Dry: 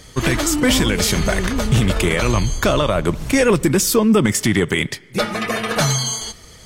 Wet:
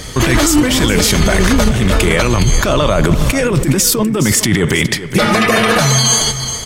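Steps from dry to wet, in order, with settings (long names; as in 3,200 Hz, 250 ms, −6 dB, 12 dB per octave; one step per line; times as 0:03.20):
compressor whose output falls as the input rises −21 dBFS, ratio −1
single-tap delay 414 ms −13 dB
boost into a limiter +11.5 dB
level −1 dB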